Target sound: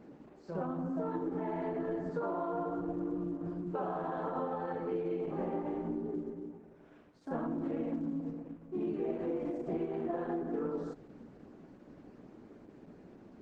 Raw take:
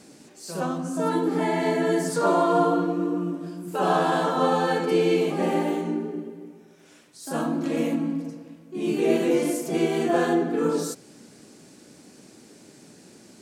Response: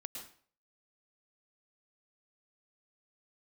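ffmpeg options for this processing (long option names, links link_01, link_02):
-af "acompressor=threshold=-30dB:ratio=8,lowpass=1300,volume=-2dB" -ar 48000 -c:a libopus -b:a 12k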